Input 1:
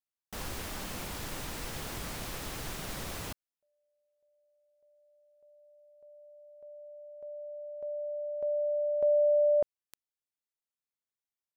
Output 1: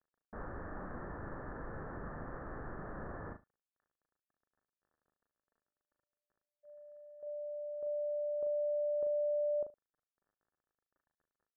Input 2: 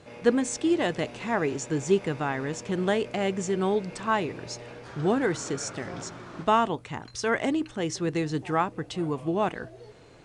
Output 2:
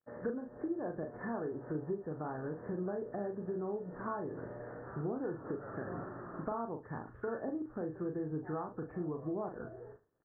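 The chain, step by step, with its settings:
hearing-aid frequency compression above 1,300 Hz 1.5 to 1
treble cut that deepens with the level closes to 1,100 Hz, closed at −26 dBFS
noise gate −48 dBFS, range −46 dB
downward compressor 6 to 1, threshold −33 dBFS
surface crackle 21 per second −53 dBFS
Chebyshev low-pass with heavy ripple 1,800 Hz, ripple 3 dB
double-tracking delay 39 ms −6 dB
single-tap delay 74 ms −19 dB
level −2 dB

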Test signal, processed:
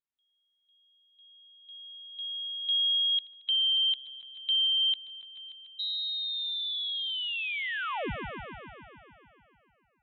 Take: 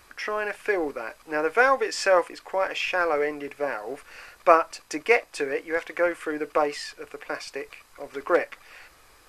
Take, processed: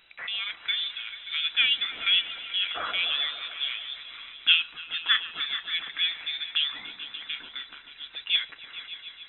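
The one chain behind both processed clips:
voice inversion scrambler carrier 3,900 Hz
echo whose low-pass opens from repeat to repeat 145 ms, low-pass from 750 Hz, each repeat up 1 octave, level −6 dB
level −4 dB

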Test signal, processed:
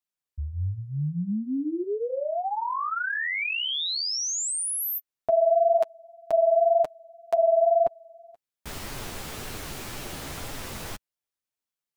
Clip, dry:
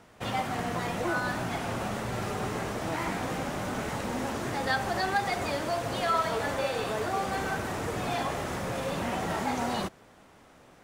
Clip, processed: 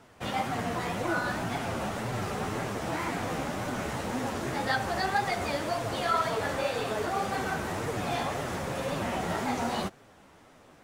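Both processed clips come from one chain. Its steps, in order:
flanger 1.9 Hz, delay 6.5 ms, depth 8.5 ms, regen −8%
level +3 dB

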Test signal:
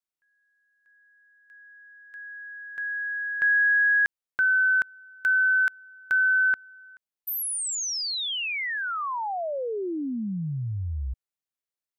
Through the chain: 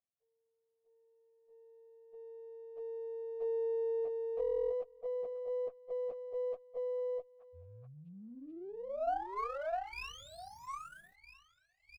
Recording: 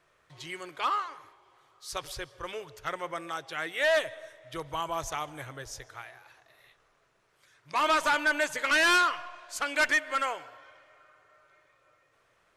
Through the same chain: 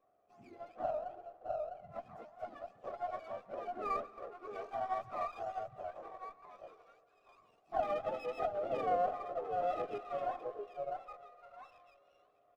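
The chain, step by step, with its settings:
frequency axis turned over on the octave scale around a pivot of 870 Hz
in parallel at +1 dB: downward compressor, threshold −36 dBFS
on the sum: formant filter a
on a send: echo through a band-pass that steps 654 ms, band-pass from 530 Hz, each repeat 1.4 octaves, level −1 dB
on the sum: downsampling to 32,000 Hz
windowed peak hold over 5 samples
level −2 dB

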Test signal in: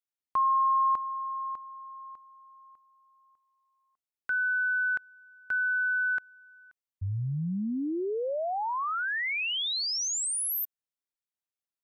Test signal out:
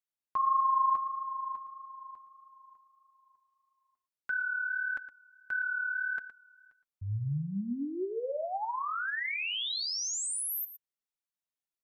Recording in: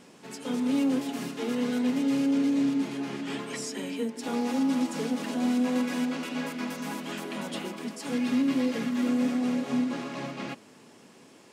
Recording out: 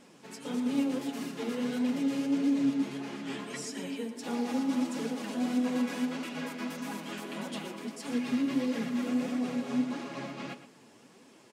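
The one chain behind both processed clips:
flanger 1.6 Hz, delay 3 ms, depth 7.6 ms, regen +35%
on a send: single-tap delay 115 ms −13 dB

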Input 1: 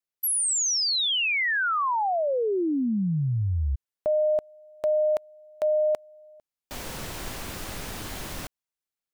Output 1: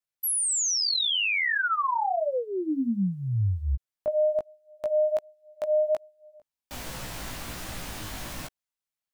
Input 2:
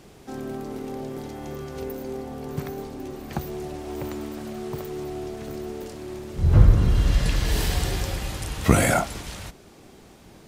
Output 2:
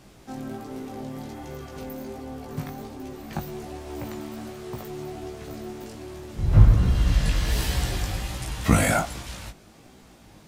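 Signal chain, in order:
parametric band 410 Hz −6 dB 0.45 octaves
floating-point word with a short mantissa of 8 bits
chorus effect 1.3 Hz, delay 15.5 ms, depth 4 ms
level +2 dB

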